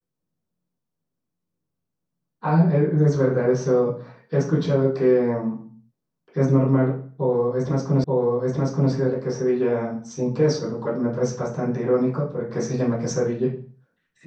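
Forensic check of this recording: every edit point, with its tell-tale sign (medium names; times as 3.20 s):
8.04 s: repeat of the last 0.88 s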